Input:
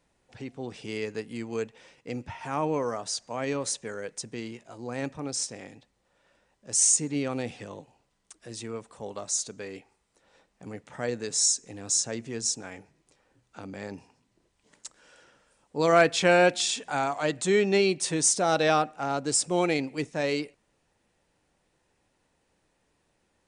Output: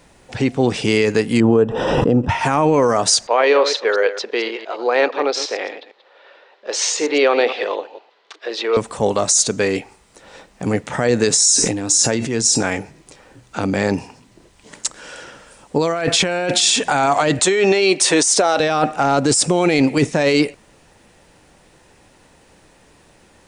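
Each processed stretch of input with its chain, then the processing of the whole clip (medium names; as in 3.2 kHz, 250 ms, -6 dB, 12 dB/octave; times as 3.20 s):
1.40–2.29 s: boxcar filter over 20 samples + swell ahead of each attack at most 28 dB/s
3.27–8.77 s: chunks repeated in reverse 115 ms, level -12 dB + elliptic band-pass 410–4100 Hz, stop band 60 dB
11.41–12.63 s: feedback comb 300 Hz, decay 0.23 s, harmonics odd + decay stretcher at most 51 dB/s
17.39–18.60 s: high-pass 400 Hz + treble shelf 9.1 kHz -6.5 dB
whole clip: compressor with a negative ratio -30 dBFS, ratio -1; loudness maximiser +21.5 dB; trim -4 dB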